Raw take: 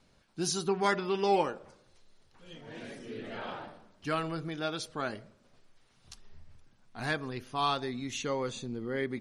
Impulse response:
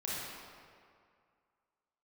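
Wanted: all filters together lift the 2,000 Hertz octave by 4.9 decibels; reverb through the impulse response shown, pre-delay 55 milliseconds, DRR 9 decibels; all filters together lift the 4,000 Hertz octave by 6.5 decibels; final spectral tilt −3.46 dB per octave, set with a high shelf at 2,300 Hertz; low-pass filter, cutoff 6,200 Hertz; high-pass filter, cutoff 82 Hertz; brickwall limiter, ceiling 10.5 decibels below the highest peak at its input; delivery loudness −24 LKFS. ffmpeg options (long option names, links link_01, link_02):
-filter_complex "[0:a]highpass=82,lowpass=6200,equalizer=frequency=2000:width_type=o:gain=3,highshelf=frequency=2300:gain=5.5,equalizer=frequency=4000:width_type=o:gain=3,alimiter=limit=-21.5dB:level=0:latency=1,asplit=2[link_01][link_02];[1:a]atrim=start_sample=2205,adelay=55[link_03];[link_02][link_03]afir=irnorm=-1:irlink=0,volume=-13dB[link_04];[link_01][link_04]amix=inputs=2:normalize=0,volume=10dB"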